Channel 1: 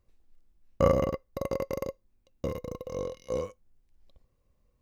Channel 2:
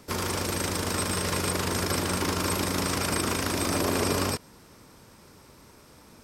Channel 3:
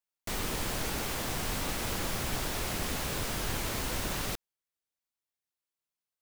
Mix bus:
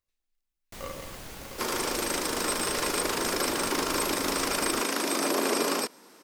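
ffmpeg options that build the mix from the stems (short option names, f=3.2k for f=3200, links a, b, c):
-filter_complex "[0:a]tiltshelf=f=970:g=-10,volume=-13dB[a];[1:a]highpass=f=250:w=0.5412,highpass=f=250:w=1.3066,adelay=1500,volume=0.5dB[b];[2:a]adelay=450,volume=-9dB[c];[a][b][c]amix=inputs=3:normalize=0"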